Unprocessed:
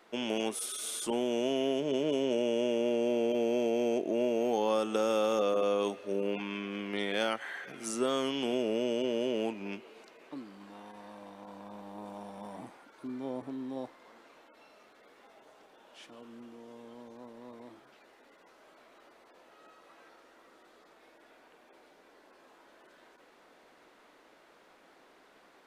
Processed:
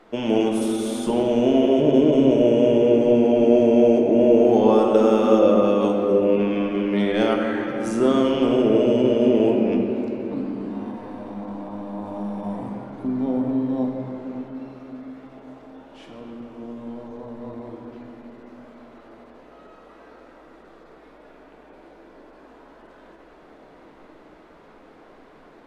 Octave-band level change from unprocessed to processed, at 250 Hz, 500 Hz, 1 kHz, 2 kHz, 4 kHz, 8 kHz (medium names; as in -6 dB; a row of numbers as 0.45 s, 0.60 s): +16.0 dB, +13.0 dB, +10.5 dB, +6.0 dB, +3.5 dB, no reading